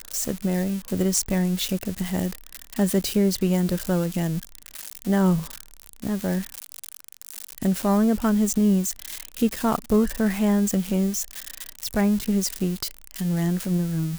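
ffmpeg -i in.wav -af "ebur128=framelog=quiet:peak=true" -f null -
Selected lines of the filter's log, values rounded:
Integrated loudness:
  I:         -24.0 LUFS
  Threshold: -34.6 LUFS
Loudness range:
  LRA:         4.1 LU
  Threshold: -44.5 LUFS
  LRA low:   -26.8 LUFS
  LRA high:  -22.7 LUFS
True peak:
  Peak:       -5.4 dBFS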